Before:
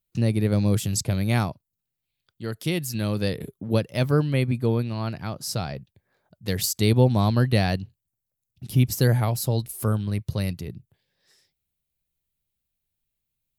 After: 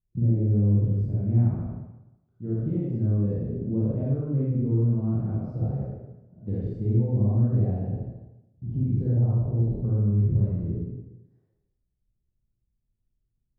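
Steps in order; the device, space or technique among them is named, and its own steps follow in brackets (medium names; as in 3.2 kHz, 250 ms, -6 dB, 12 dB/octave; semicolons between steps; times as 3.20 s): spectral sustain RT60 0.85 s; television next door (compression 5:1, threshold -25 dBFS, peak gain reduction 11.5 dB; low-pass 270 Hz 12 dB/octave; reverberation RT60 0.70 s, pre-delay 32 ms, DRR -6.5 dB); 9.17–9.62 s: steep low-pass 1.6 kHz 48 dB/octave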